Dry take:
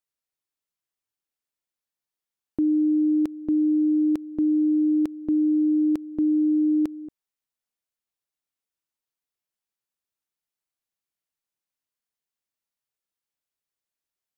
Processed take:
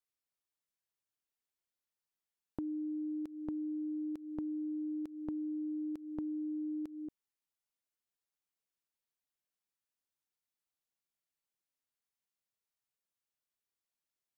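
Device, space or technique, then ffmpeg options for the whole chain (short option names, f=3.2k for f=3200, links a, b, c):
serial compression, leveller first: -af "acompressor=threshold=-28dB:ratio=2,acompressor=threshold=-33dB:ratio=5,volume=-4.5dB"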